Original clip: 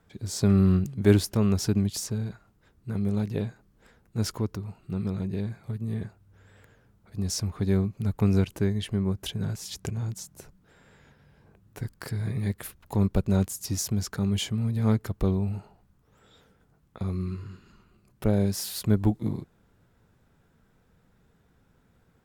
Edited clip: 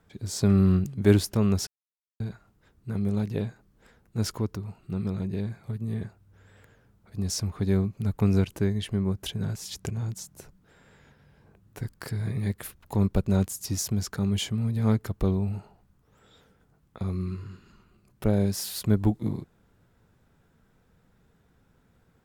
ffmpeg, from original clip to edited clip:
-filter_complex "[0:a]asplit=3[a][b][c];[a]atrim=end=1.67,asetpts=PTS-STARTPTS,afade=t=out:st=1.666:d=0.004:c=hsin[d];[b]atrim=start=1.67:end=2.2,asetpts=PTS-STARTPTS,volume=0[e];[c]atrim=start=2.2,asetpts=PTS-STARTPTS,afade=t=in:d=0.004:c=hsin[f];[d][e][f]concat=n=3:v=0:a=1"

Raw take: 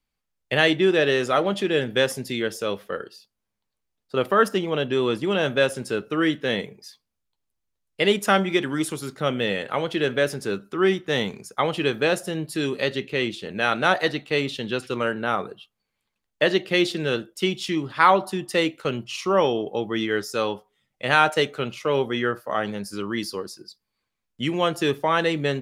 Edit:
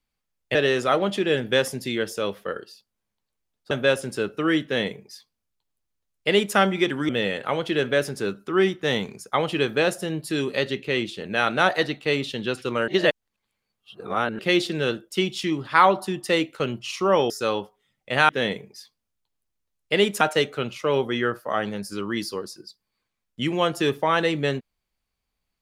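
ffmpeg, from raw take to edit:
-filter_complex "[0:a]asplit=9[a][b][c][d][e][f][g][h][i];[a]atrim=end=0.552[j];[b]atrim=start=0.988:end=4.152[k];[c]atrim=start=5.438:end=8.822[l];[d]atrim=start=9.338:end=15.132[m];[e]atrim=start=15.128:end=16.642,asetpts=PTS-STARTPTS,areverse[n];[f]atrim=start=16.638:end=19.552[o];[g]atrim=start=20.228:end=21.222[p];[h]atrim=start=6.368:end=8.292[q];[i]atrim=start=21.218[r];[j][k]acrossfade=d=0.004:c1=hsin:c2=hsin[s];[s][l]acrossfade=d=0.004:c1=hsin:c2=hsin[t];[t][m]acrossfade=d=0.004:c1=hsin:c2=hsin[u];[u][n]acrossfade=d=0.004:c1=hsin:c2=hsin[v];[v][o]acrossfade=d=0.004:c1=hsin:c2=hsin[w];[w][p]acrossfade=d=0.004:c1=hsin:c2=hsin[x];[x][q]acrossfade=d=0.004:c1=hsin:c2=hsin[y];[y][r]acrossfade=d=0.004:c1=hsin:c2=hsin"

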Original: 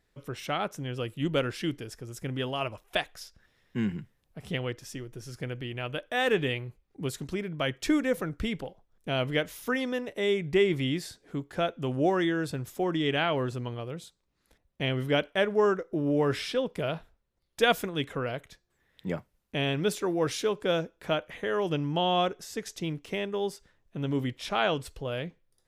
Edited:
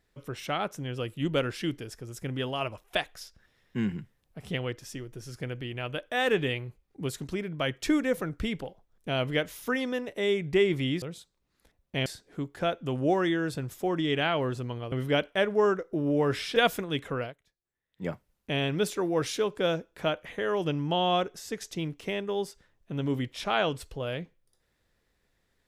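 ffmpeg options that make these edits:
-filter_complex "[0:a]asplit=7[a][b][c][d][e][f][g];[a]atrim=end=11.022[h];[b]atrim=start=13.878:end=14.922[i];[c]atrim=start=11.018:end=13.882[j];[d]atrim=start=14.918:end=16.562[k];[e]atrim=start=17.608:end=18.39,asetpts=PTS-STARTPTS,afade=t=out:st=0.662:d=0.12:silence=0.112202[l];[f]atrim=start=18.39:end=19.01,asetpts=PTS-STARTPTS,volume=-19dB[m];[g]atrim=start=19.01,asetpts=PTS-STARTPTS,afade=t=in:d=0.12:silence=0.112202[n];[h][i]acrossfade=d=0.004:c1=hsin:c2=hsin[o];[o][j]acrossfade=d=0.004:c1=hsin:c2=hsin[p];[p][k]acrossfade=d=0.004:c1=hsin:c2=hsin[q];[l][m][n]concat=n=3:v=0:a=1[r];[q][r]acrossfade=d=0.004:c1=hsin:c2=hsin"

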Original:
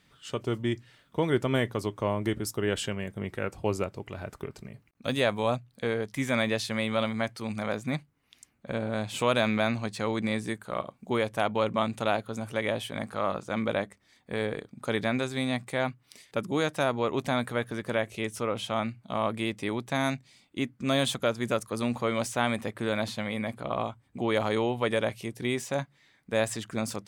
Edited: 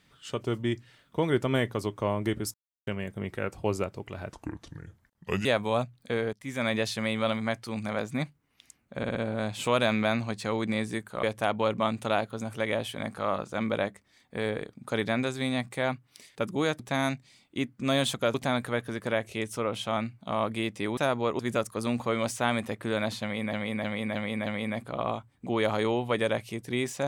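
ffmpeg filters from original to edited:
-filter_complex "[0:a]asplit=18[a][b][c][d][e][f][g][h][i][j][k][l][m][n][o][p][q][r];[a]atrim=end=2.54,asetpts=PTS-STARTPTS,afade=t=out:st=2.536:d=0.004:c=hsin[s];[b]atrim=start=2.54:end=2.87,asetpts=PTS-STARTPTS,volume=0[t];[c]atrim=start=2.87:end=4.324,asetpts=PTS-STARTPTS,afade=t=in:d=0.004:c=hsin[u];[d]atrim=start=4.32:end=5.18,asetpts=PTS-STARTPTS,asetrate=33516,aresample=44100[v];[e]atrim=start=5.176:end=6.06,asetpts=PTS-STARTPTS,afade=t=out:st=0.88:d=0.004:c=hsin:silence=0.133352[w];[f]atrim=start=6.06:end=8.762,asetpts=PTS-STARTPTS,afade=t=in:d=0.42:silence=0.133352[x];[g]atrim=start=8.698:end=8.762[y];[h]atrim=start=8.698:end=8.762[z];[i]atrim=start=8.698:end=10.782[aa];[j]atrim=start=11.188:end=16.752[ab];[k]atrim=start=19.798:end=21.352[ac];[l]atrim=start=17.168:end=19.802[ad];[m]atrim=start=16.748:end=17.172[ae];[n]atrim=start=21.348:end=23.492[af];[o]atrim=start=23.178:end=23.492[ag];[p]atrim=start=23.178:end=23.492[ah];[q]atrim=start=23.178:end=23.492[ai];[r]atrim=start=23.178[aj];[s][t][u]concat=n=3:v=0:a=1[ak];[ak][v]acrossfade=d=0.004:c1=hsin:c2=hsin[al];[w][x]concat=n=2:v=0:a=1[am];[al][am]acrossfade=d=0.004:c1=hsin:c2=hsin[an];[an][y]acrossfade=d=0.004:c1=hsin:c2=hsin[ao];[ao][z]acrossfade=d=0.004:c1=hsin:c2=hsin[ap];[ap][aa]acrossfade=d=0.004:c1=hsin:c2=hsin[aq];[aq][ab]acrossfade=d=0.004:c1=hsin:c2=hsin[ar];[ar][ac]acrossfade=d=0.004:c1=hsin:c2=hsin[as];[as][ad]acrossfade=d=0.004:c1=hsin:c2=hsin[at];[at][ae]acrossfade=d=0.004:c1=hsin:c2=hsin[au];[au][af]acrossfade=d=0.004:c1=hsin:c2=hsin[av];[av][ag]acrossfade=d=0.004:c1=hsin:c2=hsin[aw];[aw][ah]acrossfade=d=0.004:c1=hsin:c2=hsin[ax];[ax][ai]acrossfade=d=0.004:c1=hsin:c2=hsin[ay];[ay][aj]acrossfade=d=0.004:c1=hsin:c2=hsin"

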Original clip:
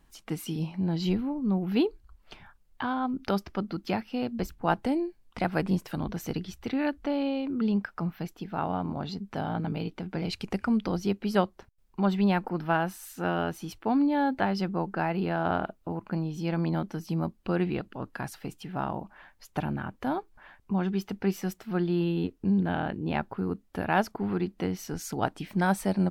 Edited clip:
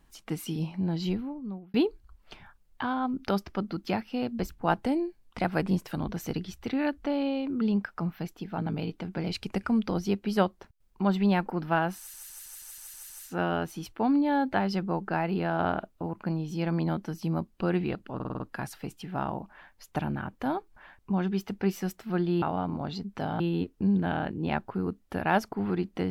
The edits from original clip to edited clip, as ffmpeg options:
-filter_complex "[0:a]asplit=17[a][b][c][d][e][f][g][h][i][j][k][l][m][n][o][p][q];[a]atrim=end=1.74,asetpts=PTS-STARTPTS,afade=t=out:st=0.54:d=1.2:c=qsin[r];[b]atrim=start=1.74:end=8.582,asetpts=PTS-STARTPTS,afade=t=in:d=0.004:c=hsin[s];[c]atrim=start=9.558:end=13.122[t];[d]atrim=start=12.958:end=13.122[u];[e]atrim=start=12.958:end=13.122[v];[f]atrim=start=12.958:end=13.122[w];[g]atrim=start=12.958:end=13.122[x];[h]atrim=start=12.958:end=13.122[y];[i]atrim=start=12.958:end=13.122[z];[j]atrim=start=12.958:end=18.062[aa];[k]atrim=start=18.008:end=18.062[ab];[l]atrim=start=18.008:end=18.062[ac];[m]atrim=start=18.008:end=18.062[ad];[n]atrim=start=18.008:end=18.062[ae];[o]atrim=start=18.008:end=22.032[af];[p]atrim=start=8.578:end=9.562[ag];[q]atrim=start=22.028[ah];[r][s]concat=n=2:v=0:a=1[ai];[ai][t]acrossfade=d=0.004:c1=hsin:c2=hsin[aj];[aj][u]acrossfade=d=0.004:c1=hsin:c2=hsin[ak];[ak][v]acrossfade=d=0.004:c1=hsin:c2=hsin[al];[al][w]acrossfade=d=0.004:c1=hsin:c2=hsin[am];[am][x]acrossfade=d=0.004:c1=hsin:c2=hsin[an];[an][y]acrossfade=d=0.004:c1=hsin:c2=hsin[ao];[ao][z]acrossfade=d=0.004:c1=hsin:c2=hsin[ap];[ap][aa]acrossfade=d=0.004:c1=hsin:c2=hsin[aq];[aq][ab]acrossfade=d=0.004:c1=hsin:c2=hsin[ar];[ar][ac]acrossfade=d=0.004:c1=hsin:c2=hsin[as];[as][ad]acrossfade=d=0.004:c1=hsin:c2=hsin[at];[at][ae]acrossfade=d=0.004:c1=hsin:c2=hsin[au];[au][af]acrossfade=d=0.004:c1=hsin:c2=hsin[av];[av][ag]acrossfade=d=0.004:c1=hsin:c2=hsin[aw];[aw][ah]acrossfade=d=0.004:c1=hsin:c2=hsin"

